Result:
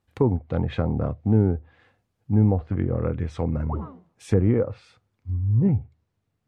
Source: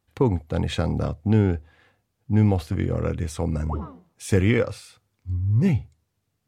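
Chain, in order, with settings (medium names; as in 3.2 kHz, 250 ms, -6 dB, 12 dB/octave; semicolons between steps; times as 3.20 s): low-pass that closes with the level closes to 900 Hz, closed at -18 dBFS; treble shelf 4 kHz -6 dB, from 3.65 s -12 dB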